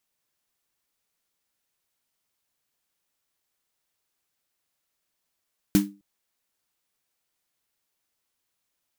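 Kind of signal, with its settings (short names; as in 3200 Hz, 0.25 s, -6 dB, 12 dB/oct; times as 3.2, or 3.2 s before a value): snare drum length 0.26 s, tones 200 Hz, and 300 Hz, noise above 760 Hz, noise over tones -9 dB, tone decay 0.31 s, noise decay 0.20 s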